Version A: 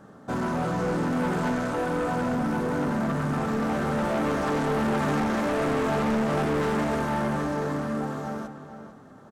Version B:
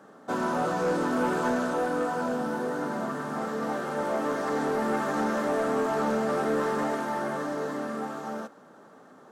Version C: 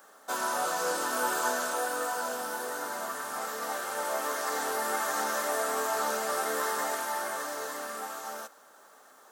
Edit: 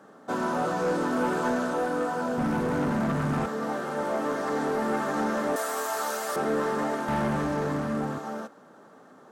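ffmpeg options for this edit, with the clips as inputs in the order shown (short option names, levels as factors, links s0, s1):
-filter_complex "[0:a]asplit=2[s0][s1];[1:a]asplit=4[s2][s3][s4][s5];[s2]atrim=end=2.382[s6];[s0]atrim=start=2.378:end=3.462[s7];[s3]atrim=start=3.458:end=5.562[s8];[2:a]atrim=start=5.558:end=6.362[s9];[s4]atrim=start=6.358:end=7.082[s10];[s1]atrim=start=7.078:end=8.182[s11];[s5]atrim=start=8.178[s12];[s6][s7]acrossfade=d=0.004:c1=hsin:c2=hsin[s13];[s13][s8]acrossfade=d=0.004:c1=hsin:c2=hsin[s14];[s14][s9]acrossfade=d=0.004:c1=hsin:c2=hsin[s15];[s15][s10]acrossfade=d=0.004:c1=hsin:c2=hsin[s16];[s16][s11]acrossfade=d=0.004:c1=hsin:c2=hsin[s17];[s17][s12]acrossfade=d=0.004:c1=hsin:c2=hsin"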